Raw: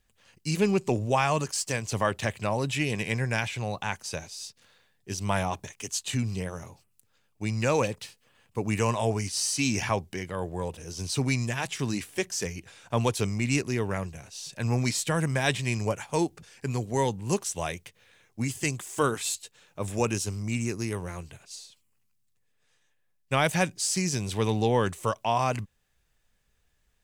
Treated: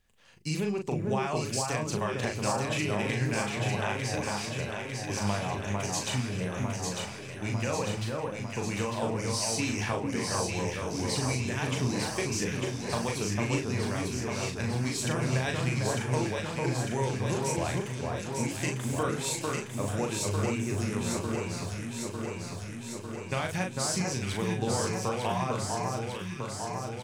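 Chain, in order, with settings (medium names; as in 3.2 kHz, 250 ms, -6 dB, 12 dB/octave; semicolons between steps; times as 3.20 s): treble shelf 5.6 kHz -4.5 dB; de-hum 52.76 Hz, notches 10; compression, threshold -29 dBFS, peak gain reduction 10 dB; doubling 39 ms -4.5 dB; echo whose repeats swap between lows and highs 450 ms, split 1.6 kHz, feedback 83%, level -2 dB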